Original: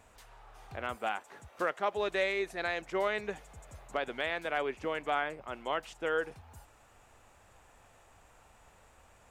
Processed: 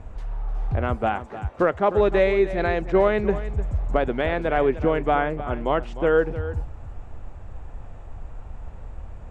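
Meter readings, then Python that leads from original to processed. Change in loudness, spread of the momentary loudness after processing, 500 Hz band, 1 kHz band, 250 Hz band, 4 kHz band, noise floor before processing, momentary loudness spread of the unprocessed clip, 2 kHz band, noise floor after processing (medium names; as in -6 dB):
+11.0 dB, 22 LU, +13.5 dB, +10.0 dB, +17.0 dB, +1.5 dB, -62 dBFS, 11 LU, +5.5 dB, -40 dBFS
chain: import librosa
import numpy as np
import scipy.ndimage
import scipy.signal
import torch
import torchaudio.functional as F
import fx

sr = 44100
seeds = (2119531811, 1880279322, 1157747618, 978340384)

p1 = scipy.signal.sosfilt(scipy.signal.butter(2, 9400.0, 'lowpass', fs=sr, output='sos'), x)
p2 = fx.tilt_eq(p1, sr, slope=-4.5)
p3 = p2 + fx.echo_single(p2, sr, ms=303, db=-13.5, dry=0)
y = p3 * librosa.db_to_amplitude(9.0)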